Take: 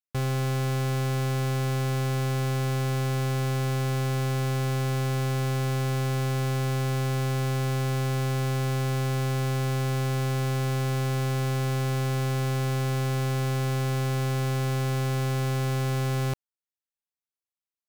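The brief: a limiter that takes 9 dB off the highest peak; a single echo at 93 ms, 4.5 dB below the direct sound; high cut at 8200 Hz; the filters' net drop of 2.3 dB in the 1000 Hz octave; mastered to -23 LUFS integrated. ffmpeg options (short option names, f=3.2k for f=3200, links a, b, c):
-af "lowpass=8.2k,equalizer=f=1k:t=o:g=-3,alimiter=level_in=10.5dB:limit=-24dB:level=0:latency=1,volume=-10.5dB,aecho=1:1:93:0.596,volume=12.5dB"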